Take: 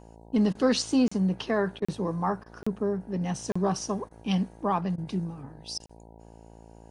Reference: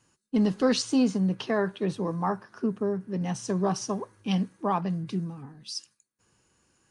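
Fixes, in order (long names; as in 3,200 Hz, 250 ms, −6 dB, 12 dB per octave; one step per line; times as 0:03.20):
hum removal 56 Hz, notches 17
repair the gap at 0:01.08/0:01.85/0:02.63/0:03.52/0:05.86, 35 ms
repair the gap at 0:00.53/0:01.80/0:02.44/0:04.09/0:04.96/0:05.78, 19 ms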